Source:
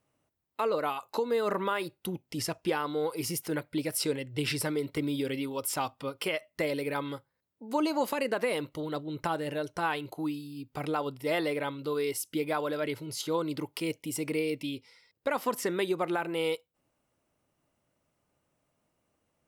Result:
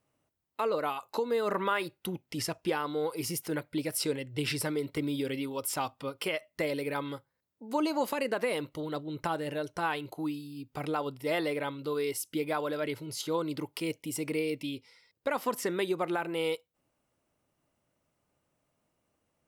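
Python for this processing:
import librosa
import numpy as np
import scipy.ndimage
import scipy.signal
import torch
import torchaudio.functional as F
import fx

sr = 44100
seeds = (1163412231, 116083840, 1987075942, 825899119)

y = fx.peak_eq(x, sr, hz=1800.0, db=4.0, octaves=1.8, at=(1.54, 2.46))
y = y * 10.0 ** (-1.0 / 20.0)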